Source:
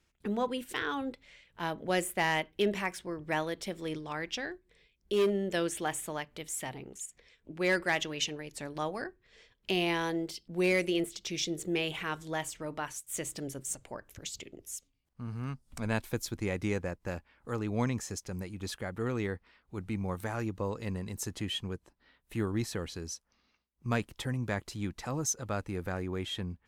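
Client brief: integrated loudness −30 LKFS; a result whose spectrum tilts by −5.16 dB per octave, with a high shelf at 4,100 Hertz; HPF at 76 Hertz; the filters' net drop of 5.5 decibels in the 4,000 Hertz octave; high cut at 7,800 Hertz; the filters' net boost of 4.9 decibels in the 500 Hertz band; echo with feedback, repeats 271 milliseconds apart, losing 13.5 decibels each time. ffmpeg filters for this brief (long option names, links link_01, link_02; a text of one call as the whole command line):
ffmpeg -i in.wav -af "highpass=76,lowpass=7800,equalizer=frequency=500:width_type=o:gain=6.5,equalizer=frequency=4000:width_type=o:gain=-3,highshelf=frequency=4100:gain=-8.5,aecho=1:1:271|542:0.211|0.0444,volume=2.5dB" out.wav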